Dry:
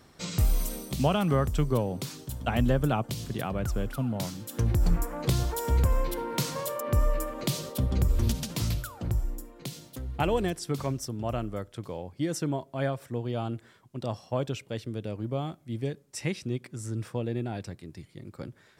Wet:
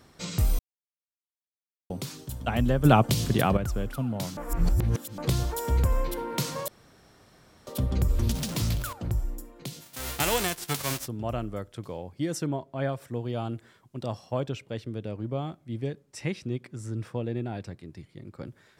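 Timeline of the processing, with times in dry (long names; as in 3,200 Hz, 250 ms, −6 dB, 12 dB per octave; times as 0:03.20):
0:00.59–0:01.90: silence
0:02.85–0:03.57: clip gain +9 dB
0:04.37–0:05.18: reverse
0:06.68–0:07.67: fill with room tone
0:08.34–0:08.93: converter with a step at zero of −33.5 dBFS
0:09.80–0:11.06: spectral envelope flattened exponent 0.3
0:12.46–0:12.89: low-pass filter 3,400 Hz 6 dB per octave
0:14.40–0:18.47: high-shelf EQ 5,900 Hz −8.5 dB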